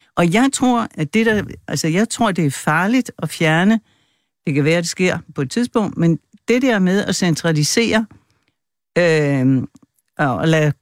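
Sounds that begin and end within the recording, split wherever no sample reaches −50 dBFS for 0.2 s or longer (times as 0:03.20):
0:04.45–0:08.48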